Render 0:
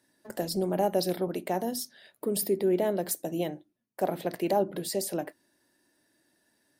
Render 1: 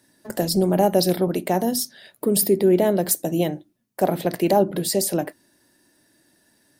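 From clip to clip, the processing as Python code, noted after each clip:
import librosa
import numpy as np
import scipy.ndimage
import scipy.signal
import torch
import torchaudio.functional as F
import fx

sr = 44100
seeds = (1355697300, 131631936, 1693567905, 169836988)

y = fx.bass_treble(x, sr, bass_db=5, treble_db=3)
y = F.gain(torch.from_numpy(y), 7.5).numpy()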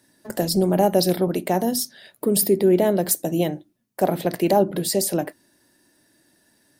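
y = x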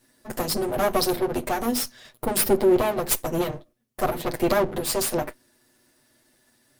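y = fx.lower_of_two(x, sr, delay_ms=8.1)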